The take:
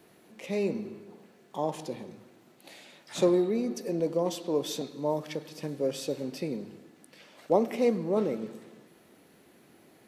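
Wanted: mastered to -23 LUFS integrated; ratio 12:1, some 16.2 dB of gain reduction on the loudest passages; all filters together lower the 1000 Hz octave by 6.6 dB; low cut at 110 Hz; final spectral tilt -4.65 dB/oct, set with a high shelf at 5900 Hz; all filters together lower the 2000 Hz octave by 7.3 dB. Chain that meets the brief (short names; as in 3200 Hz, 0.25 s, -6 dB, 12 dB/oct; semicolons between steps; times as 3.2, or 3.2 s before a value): HPF 110 Hz; bell 1000 Hz -8 dB; bell 2000 Hz -8 dB; high shelf 5900 Hz +4 dB; compressor 12:1, threshold -37 dBFS; gain +20 dB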